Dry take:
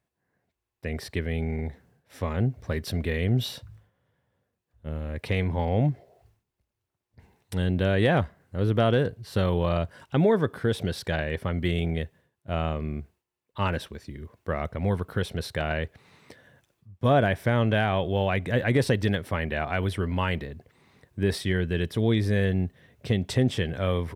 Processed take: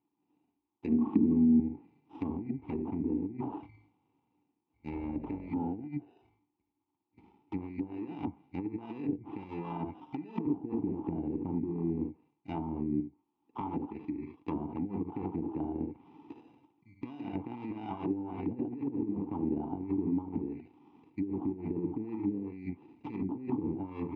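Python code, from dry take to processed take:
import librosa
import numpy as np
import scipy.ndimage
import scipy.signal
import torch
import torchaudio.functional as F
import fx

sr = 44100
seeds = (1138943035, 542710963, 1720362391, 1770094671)

p1 = x + fx.room_early_taps(x, sr, ms=(41, 54, 75), db=(-15.5, -10.5, -8.0), dry=0)
p2 = fx.sample_hold(p1, sr, seeds[0], rate_hz=2200.0, jitter_pct=0)
p3 = fx.air_absorb(p2, sr, metres=85.0)
p4 = fx.over_compress(p3, sr, threshold_db=-27.0, ratio=-0.5)
p5 = fx.vowel_filter(p4, sr, vowel='u')
p6 = fx.env_lowpass_down(p5, sr, base_hz=510.0, full_db=-38.5)
p7 = fx.small_body(p6, sr, hz=(220.0, 1100.0), ring_ms=85, db=16, at=(0.89, 1.6))
p8 = fx.dmg_buzz(p7, sr, base_hz=50.0, harmonics=13, level_db=-59.0, tilt_db=-3, odd_only=False, at=(4.91, 5.48), fade=0.02)
p9 = fx.band_squash(p8, sr, depth_pct=70, at=(13.0, 13.61))
y = F.gain(torch.from_numpy(p9), 8.5).numpy()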